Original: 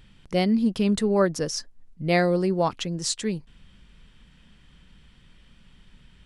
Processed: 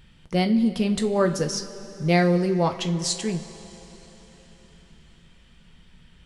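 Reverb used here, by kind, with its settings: two-slope reverb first 0.28 s, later 4.3 s, from -18 dB, DRR 5.5 dB

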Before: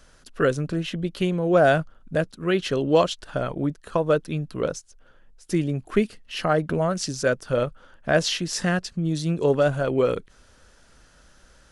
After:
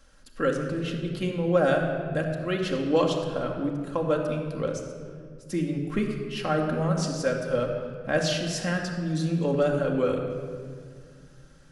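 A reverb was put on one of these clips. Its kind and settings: simulated room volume 3700 m³, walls mixed, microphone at 2.2 m; trim -6.5 dB

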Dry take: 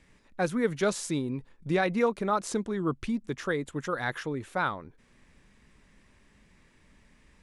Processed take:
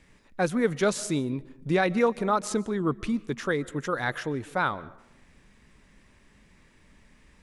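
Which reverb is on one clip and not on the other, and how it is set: algorithmic reverb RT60 0.87 s, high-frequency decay 0.4×, pre-delay 100 ms, DRR 20 dB; trim +2.5 dB

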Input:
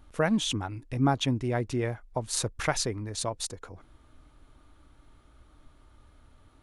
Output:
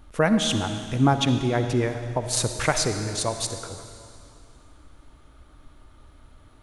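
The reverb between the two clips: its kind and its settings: algorithmic reverb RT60 2.4 s, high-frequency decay 1×, pre-delay 20 ms, DRR 7.5 dB; trim +5 dB

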